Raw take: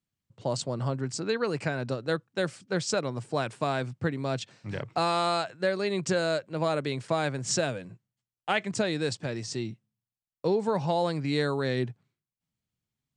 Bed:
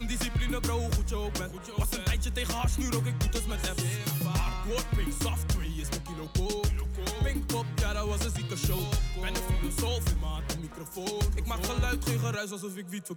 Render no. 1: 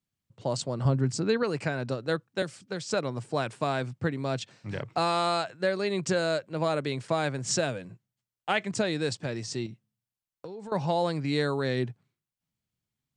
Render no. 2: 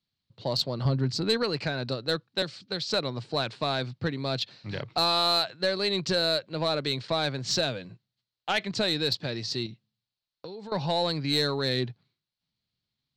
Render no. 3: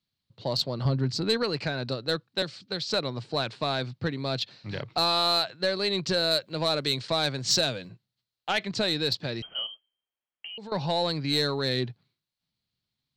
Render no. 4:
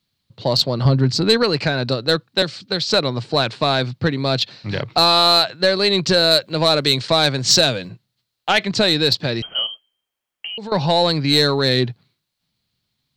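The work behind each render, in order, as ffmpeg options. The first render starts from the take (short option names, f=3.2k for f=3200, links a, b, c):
-filter_complex "[0:a]asettb=1/sr,asplit=3[a][b][c];[a]atrim=end=0.854[d];[b]atrim=start=0.85:end=1.43,asetpts=PTS-STARTPTS,afade=t=in:d=0.004:c=qsin,afade=t=out:st=0.576:d=0.004:c=qsin,lowshelf=f=290:g=9[e];[c]atrim=start=1.426[f];[d][e]acrossfade=d=0.004:c1=hsin:c2=qsin[g];[g][f]acrossfade=d=0.004:c1=qsin:c2=hsin,asettb=1/sr,asplit=3[h][i][j];[h]atrim=end=2.424[k];[i]atrim=start=2.42:end=2.91,asetpts=PTS-STARTPTS,afade=t=in:d=0.004:c=qsin,afade=t=out:st=0.486:d=0.004:c=qsin,acrossover=split=330|3100[l][m][n];[l]acompressor=threshold=-37dB:ratio=4[o];[m]acompressor=threshold=-36dB:ratio=4[p];[n]acompressor=threshold=-41dB:ratio=4[q];[o][p][q]amix=inputs=3:normalize=0[r];[j]atrim=start=2.906[s];[k][r]acrossfade=d=0.004:c1=hsin:c2=qsin[t];[t][s]acrossfade=d=0.004:c1=qsin:c2=hsin,asettb=1/sr,asplit=3[u][v][w];[u]atrim=end=9.664[x];[v]atrim=start=9.66:end=10.72,asetpts=PTS-STARTPTS,afade=t=in:d=0.004:c=qsin,afade=t=out:st=1.056:d=0.004:c=qsin,acompressor=threshold=-38dB:ratio=6:attack=3.2:release=140:knee=1:detection=peak[y];[w]atrim=start=10.716[z];[x][y]acrossfade=d=0.004:c1=hsin:c2=qsin[aa];[aa][z]acrossfade=d=0.004:c1=qsin:c2=hsin"
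-af "lowpass=f=4.2k:t=q:w=4.9,aeval=exprs='(tanh(5.62*val(0)+0.1)-tanh(0.1))/5.62':c=same"
-filter_complex "[0:a]asettb=1/sr,asplit=3[a][b][c];[a]atrim=end=6.314[d];[b]atrim=start=6.31:end=7.89,asetpts=PTS-STARTPTS,afade=t=in:d=0.004:c=qsin,afade=t=out:st=1.576:d=0.004:c=qsin,highshelf=f=6k:g=11[e];[c]atrim=start=7.886[f];[d][e]acrossfade=d=0.004:c1=hsin:c2=qsin[g];[g][f]acrossfade=d=0.004:c1=qsin:c2=hsin,asettb=1/sr,asplit=3[h][i][j];[h]atrim=end=9.424[k];[i]atrim=start=9.42:end=10.58,asetpts=PTS-STARTPTS,afade=t=in:d=0.004:c=qsin,afade=t=out:st=1.156:d=0.004:c=qsin,lowpass=f=2.8k:t=q:w=0.5098,lowpass=f=2.8k:t=q:w=0.6013,lowpass=f=2.8k:t=q:w=0.9,lowpass=f=2.8k:t=q:w=2.563,afreqshift=-3300[l];[j]atrim=start=10.576[m];[k][l]acrossfade=d=0.004:c1=hsin:c2=qsin[n];[n][m]acrossfade=d=0.004:c1=qsin:c2=hsin"
-af "volume=10.5dB,alimiter=limit=-3dB:level=0:latency=1"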